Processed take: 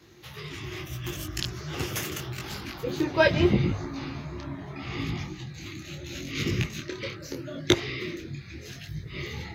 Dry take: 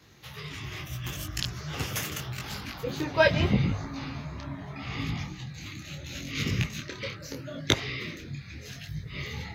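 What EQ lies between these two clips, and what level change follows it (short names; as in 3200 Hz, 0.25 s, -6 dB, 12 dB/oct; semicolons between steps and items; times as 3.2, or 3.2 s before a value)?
bell 350 Hz +13 dB 0.26 oct; 0.0 dB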